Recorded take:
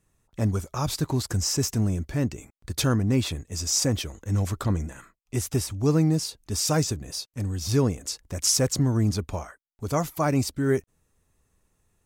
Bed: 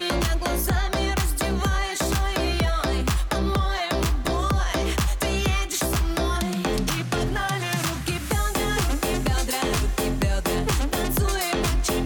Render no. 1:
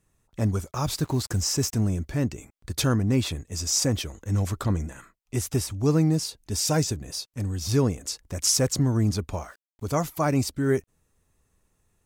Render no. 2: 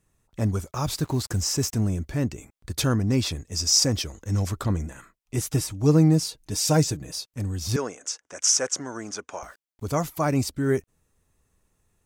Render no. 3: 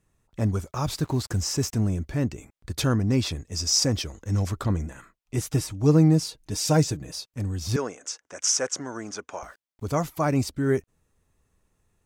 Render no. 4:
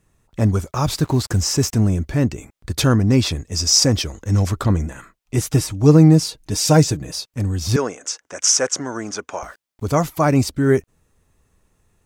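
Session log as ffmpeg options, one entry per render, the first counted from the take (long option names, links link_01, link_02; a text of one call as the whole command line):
ffmpeg -i in.wav -filter_complex "[0:a]asplit=3[link_01][link_02][link_03];[link_01]afade=type=out:start_time=0.7:duration=0.02[link_04];[link_02]acrusher=bits=7:mix=0:aa=0.5,afade=type=in:start_time=0.7:duration=0.02,afade=type=out:start_time=1.72:duration=0.02[link_05];[link_03]afade=type=in:start_time=1.72:duration=0.02[link_06];[link_04][link_05][link_06]amix=inputs=3:normalize=0,asettb=1/sr,asplit=3[link_07][link_08][link_09];[link_07]atrim=end=6.374[link_10];[link_08]atrim=start=6.37:end=6.94,asetpts=PTS-STARTPTS,afade=type=in:duration=0.004:curve=qsin,afade=type=out:start_time=0.566:duration=0.004:curve=qsin,bandreject=frequency=1200:width=6.5[link_11];[link_09]atrim=start=6.936[link_12];[link_10][link_11]acrossfade=duration=0.004:curve1=hsin:curve2=qsin[link_13];[link_13][link_12]acrossfade=duration=0.004:curve1=qsin:curve2=hsin,asettb=1/sr,asplit=3[link_14][link_15][link_16];[link_14]atrim=end=9.374[link_17];[link_15]atrim=start=9.37:end=10.12,asetpts=PTS-STARTPTS,afade=type=in:duration=0.004:curve=qsin,afade=type=out:start_time=0.746:duration=0.004:curve=qsin,aeval=exprs='val(0)*gte(abs(val(0)),0.00224)':channel_layout=same[link_18];[link_16]atrim=start=10.116[link_19];[link_17][link_18]acrossfade=duration=0.004:curve1=hsin:curve2=qsin[link_20];[link_20][link_19]acrossfade=duration=0.004:curve1=qsin:curve2=hsin" out.wav
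ffmpeg -i in.wav -filter_complex "[0:a]asettb=1/sr,asplit=3[link_01][link_02][link_03];[link_01]atrim=end=3.004[link_04];[link_02]atrim=start=3:end=4.49,asetpts=PTS-STARTPTS,afade=type=in:duration=0.004:curve=qsin,afade=type=out:start_time=1.486:duration=0.004:curve=qsin,equalizer=frequency=5200:width_type=o:width=0.45:gain=8[link_05];[link_03]atrim=start=4.486[link_06];[link_04][link_05]acrossfade=duration=0.004:curve1=hsin:curve2=qsin[link_07];[link_07][link_06]acrossfade=duration=0.004:curve1=qsin:curve2=hsin,asettb=1/sr,asplit=3[link_08][link_09][link_10];[link_08]atrim=end=5.374[link_11];[link_09]atrim=start=5.37:end=7.12,asetpts=PTS-STARTPTS,afade=type=in:duration=0.004:curve=qsin,afade=type=out:start_time=1.746:duration=0.004:curve=qsin,aecho=1:1:6.4:0.57,atrim=end_sample=77175[link_12];[link_10]atrim=start=7.116[link_13];[link_11][link_12]acrossfade=duration=0.004:curve1=hsin:curve2=qsin[link_14];[link_14][link_13]acrossfade=duration=0.004:curve1=qsin:curve2=hsin,asettb=1/sr,asplit=3[link_15][link_16][link_17];[link_15]atrim=end=7.764[link_18];[link_16]atrim=start=7.76:end=9.43,asetpts=PTS-STARTPTS,afade=type=in:duration=0.004:curve=qsin,afade=type=out:start_time=1.666:duration=0.004:curve=qsin,highpass=480,equalizer=frequency=1500:width_type=q:width=4:gain=7,equalizer=frequency=4200:width_type=q:width=4:gain=-9,equalizer=frequency=6100:width_type=q:width=4:gain=6,lowpass=frequency=8500:width=0.5412,lowpass=frequency=8500:width=1.3066[link_19];[link_17]atrim=start=9.426[link_20];[link_18][link_19]acrossfade=duration=0.004:curve1=hsin:curve2=qsin[link_21];[link_21][link_20]acrossfade=duration=0.004:curve1=qsin:curve2=hsin" out.wav
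ffmpeg -i in.wav -af "highshelf=frequency=6000:gain=-5.5" out.wav
ffmpeg -i in.wav -af "volume=7.5dB,alimiter=limit=-1dB:level=0:latency=1" out.wav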